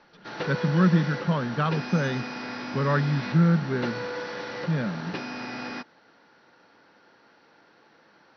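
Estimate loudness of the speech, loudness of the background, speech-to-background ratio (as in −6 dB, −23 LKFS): −25.5 LKFS, −34.5 LKFS, 9.0 dB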